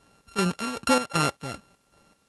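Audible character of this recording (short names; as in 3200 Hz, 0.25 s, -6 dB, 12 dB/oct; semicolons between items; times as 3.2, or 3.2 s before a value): a buzz of ramps at a fixed pitch in blocks of 32 samples; chopped level 2.6 Hz, depth 65%, duty 55%; a quantiser's noise floor 12-bit, dither triangular; MP2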